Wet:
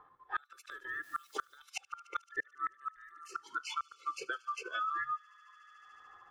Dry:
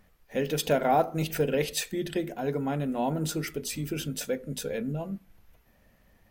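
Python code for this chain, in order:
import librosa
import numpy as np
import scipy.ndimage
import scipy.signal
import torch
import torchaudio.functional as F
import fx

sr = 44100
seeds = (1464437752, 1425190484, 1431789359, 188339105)

p1 = fx.band_swap(x, sr, width_hz=1000)
p2 = fx.env_lowpass(p1, sr, base_hz=1100.0, full_db=-23.5)
p3 = fx.noise_reduce_blind(p2, sr, reduce_db=24)
p4 = p3 + 0.66 * np.pad(p3, (int(2.3 * sr / 1000.0), 0))[:len(p3)]
p5 = fx.transient(p4, sr, attack_db=1, sustain_db=-6)
p6 = fx.gate_flip(p5, sr, shuts_db=-22.0, range_db=-36)
p7 = p6 + fx.echo_wet_highpass(p6, sr, ms=73, feedback_pct=78, hz=2200.0, wet_db=-21.5, dry=0)
p8 = fx.dmg_noise_colour(p7, sr, seeds[0], colour='white', level_db=-80.0, at=(1.02, 1.57), fade=0.02)
p9 = fx.band_squash(p8, sr, depth_pct=100)
y = F.gain(torch.from_numpy(p9), -1.5).numpy()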